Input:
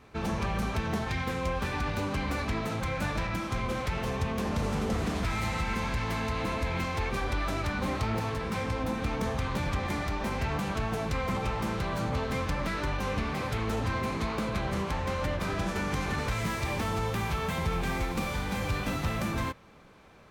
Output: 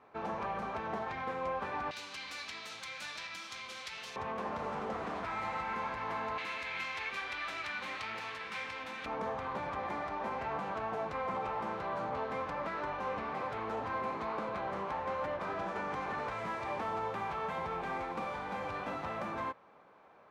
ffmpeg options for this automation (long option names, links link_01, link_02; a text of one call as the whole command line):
ffmpeg -i in.wav -af "asetnsamples=nb_out_samples=441:pad=0,asendcmd='1.91 bandpass f 4300;4.16 bandpass f 940;6.38 bandpass f 2400;9.06 bandpass f 840',bandpass=frequency=830:width_type=q:width=1.1:csg=0" out.wav